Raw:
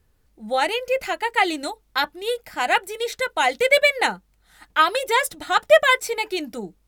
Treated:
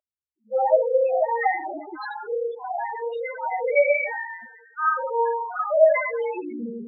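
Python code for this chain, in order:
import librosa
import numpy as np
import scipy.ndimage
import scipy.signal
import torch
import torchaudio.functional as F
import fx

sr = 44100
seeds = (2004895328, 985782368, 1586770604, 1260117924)

y = fx.comb_fb(x, sr, f0_hz=58.0, decay_s=0.59, harmonics='all', damping=0.0, mix_pct=80)
y = fx.rev_schroeder(y, sr, rt60_s=1.2, comb_ms=30, drr_db=-9.5)
y = fx.spec_topn(y, sr, count=4)
y = fx.filter_sweep_highpass(y, sr, from_hz=620.0, to_hz=120.0, start_s=1.46, end_s=2.63, q=6.2)
y = F.gain(torch.from_numpy(y), -3.0).numpy()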